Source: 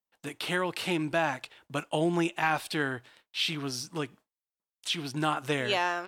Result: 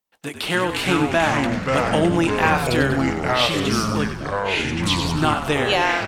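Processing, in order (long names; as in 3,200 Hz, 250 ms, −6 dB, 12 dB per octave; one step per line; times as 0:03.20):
delay with pitch and tempo change per echo 236 ms, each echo −4 semitones, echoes 3
echo with shifted repeats 96 ms, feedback 57%, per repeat −48 Hz, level −9.5 dB
level +8 dB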